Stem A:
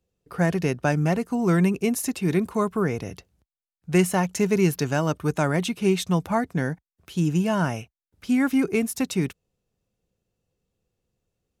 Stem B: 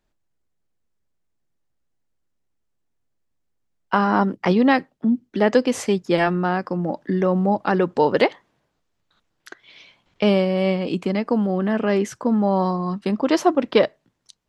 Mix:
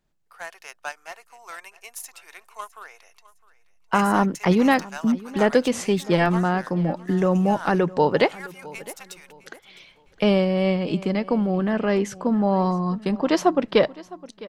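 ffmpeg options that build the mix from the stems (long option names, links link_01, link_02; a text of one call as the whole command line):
ffmpeg -i stem1.wav -i stem2.wav -filter_complex "[0:a]highpass=frequency=760:width=0.5412,highpass=frequency=760:width=1.3066,aeval=exprs='0.211*(cos(1*acos(clip(val(0)/0.211,-1,1)))-cos(1*PI/2))+0.0335*(cos(3*acos(clip(val(0)/0.211,-1,1)))-cos(3*PI/2))+0.00944*(cos(5*acos(clip(val(0)/0.211,-1,1)))-cos(5*PI/2))+0.0106*(cos(7*acos(clip(val(0)/0.211,-1,1)))-cos(7*PI/2))':channel_layout=same,volume=-2dB,asplit=2[link_01][link_02];[link_02]volume=-19.5dB[link_03];[1:a]equalizer=frequency=160:width_type=o:width=0.42:gain=10,volume=-1dB,asplit=2[link_04][link_05];[link_05]volume=-20dB[link_06];[link_03][link_06]amix=inputs=2:normalize=0,aecho=0:1:659|1318|1977|2636:1|0.29|0.0841|0.0244[link_07];[link_01][link_04][link_07]amix=inputs=3:normalize=0,asubboost=boost=6:cutoff=58" out.wav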